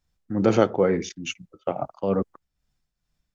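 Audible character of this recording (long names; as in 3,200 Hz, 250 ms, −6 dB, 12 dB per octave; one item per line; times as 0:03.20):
tremolo triangle 2.3 Hz, depth 65%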